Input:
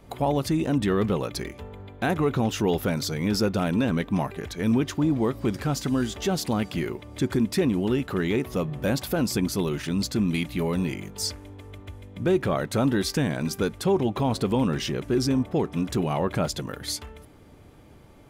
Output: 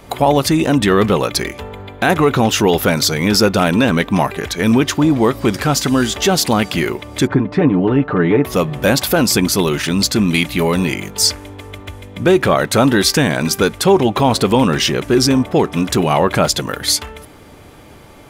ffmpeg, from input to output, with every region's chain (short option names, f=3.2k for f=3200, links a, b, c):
-filter_complex "[0:a]asettb=1/sr,asplit=3[a][b][c];[a]atrim=end=7.274[d];[b]atrim=start=7.27:end=8.45,asetpts=PTS-STARTPTS,afade=t=in:d=0.004:c=qsin,afade=t=out:st=1.176:d=0.004:c=qsin,lowpass=1.3k,aecho=1:1:6.7:0.69,atrim=end_sample=52038[e];[c]atrim=start=8.446[f];[d][e]acrossfade=d=0.004:c1=hsin:c2=qsin[g];[g][f]acrossfade=d=0.004:c1=qsin:c2=hsin,lowshelf=f=450:g=-8,alimiter=level_in=16.5dB:limit=-1dB:release=50:level=0:latency=1,volume=-1dB"